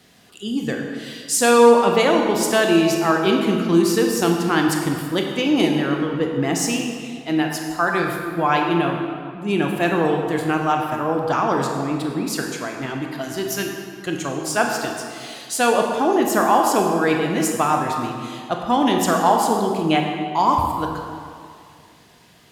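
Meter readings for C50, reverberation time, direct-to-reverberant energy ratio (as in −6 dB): 3.0 dB, 2.2 s, 1.5 dB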